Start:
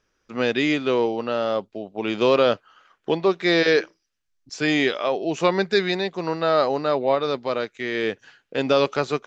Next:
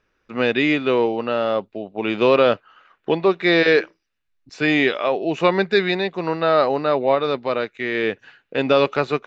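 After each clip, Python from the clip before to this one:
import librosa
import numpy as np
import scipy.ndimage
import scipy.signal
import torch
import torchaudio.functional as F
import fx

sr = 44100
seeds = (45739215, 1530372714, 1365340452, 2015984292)

y = fx.high_shelf_res(x, sr, hz=4300.0, db=-8.5, q=1.5)
y = fx.notch(y, sr, hz=3200.0, q=10.0)
y = y * librosa.db_to_amplitude(2.5)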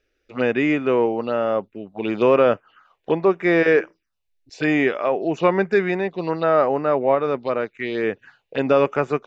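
y = fx.env_phaser(x, sr, low_hz=170.0, high_hz=4100.0, full_db=-17.5)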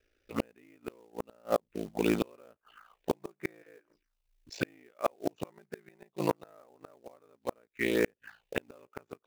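y = fx.quant_float(x, sr, bits=2)
y = y * np.sin(2.0 * np.pi * 28.0 * np.arange(len(y)) / sr)
y = fx.gate_flip(y, sr, shuts_db=-13.0, range_db=-37)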